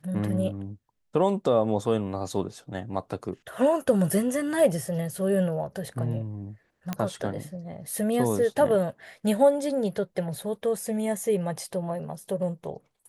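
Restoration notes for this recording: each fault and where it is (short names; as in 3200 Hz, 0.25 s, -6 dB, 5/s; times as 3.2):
6.93 pop -14 dBFS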